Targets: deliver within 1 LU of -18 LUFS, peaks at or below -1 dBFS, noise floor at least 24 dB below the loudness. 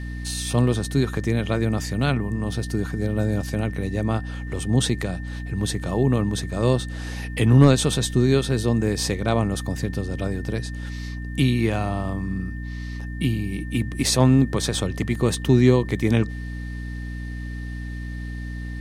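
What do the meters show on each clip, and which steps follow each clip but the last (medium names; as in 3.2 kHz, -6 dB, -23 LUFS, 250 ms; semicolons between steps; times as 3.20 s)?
hum 60 Hz; highest harmonic 300 Hz; hum level -29 dBFS; steady tone 1.8 kHz; tone level -41 dBFS; loudness -23.5 LUFS; peak level -3.5 dBFS; loudness target -18.0 LUFS
-> de-hum 60 Hz, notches 5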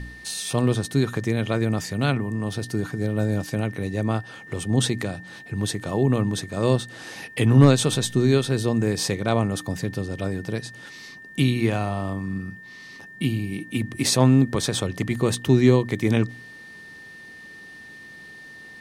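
hum not found; steady tone 1.8 kHz; tone level -41 dBFS
-> band-stop 1.8 kHz, Q 30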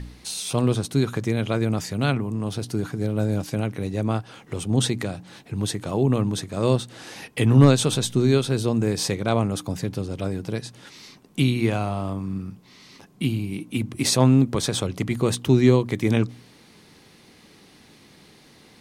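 steady tone not found; loudness -23.5 LUFS; peak level -3.5 dBFS; loudness target -18.0 LUFS
-> trim +5.5 dB; peak limiter -1 dBFS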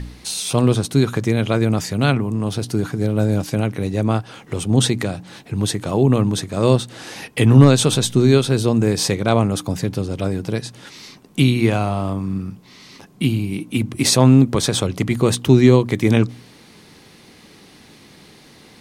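loudness -18.0 LUFS; peak level -1.0 dBFS; noise floor -47 dBFS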